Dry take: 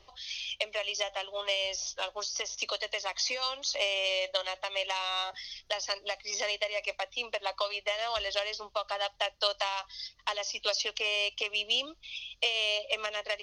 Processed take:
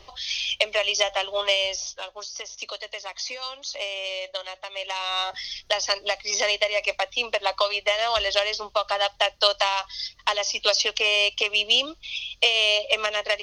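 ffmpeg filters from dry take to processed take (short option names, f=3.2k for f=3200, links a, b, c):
-af "volume=20dB,afade=t=out:st=1.38:d=0.65:silence=0.281838,afade=t=in:st=4.76:d=0.71:silence=0.316228"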